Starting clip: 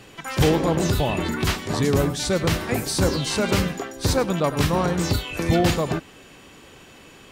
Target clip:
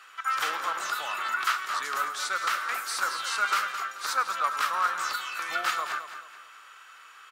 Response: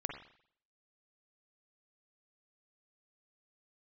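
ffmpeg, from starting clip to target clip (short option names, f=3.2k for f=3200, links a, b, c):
-af "highpass=f=1.3k:t=q:w=7.1,aecho=1:1:216|432|648|864:0.316|0.111|0.0387|0.0136,volume=-7dB"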